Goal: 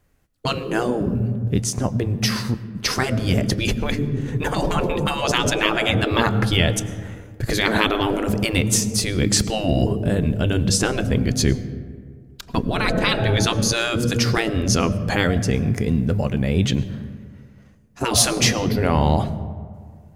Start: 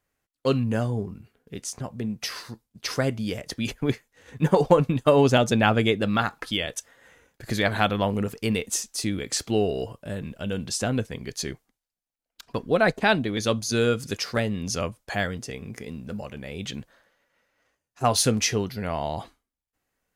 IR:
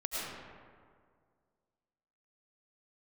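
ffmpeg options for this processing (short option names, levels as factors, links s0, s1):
-filter_complex "[0:a]asplit=2[s0][s1];[1:a]atrim=start_sample=2205,lowshelf=f=230:g=10[s2];[s1][s2]afir=irnorm=-1:irlink=0,volume=0.1[s3];[s0][s3]amix=inputs=2:normalize=0,afftfilt=real='re*lt(hypot(re,im),0.224)':imag='im*lt(hypot(re,im),0.224)':win_size=1024:overlap=0.75,lowshelf=f=340:g=11.5,volume=2.37"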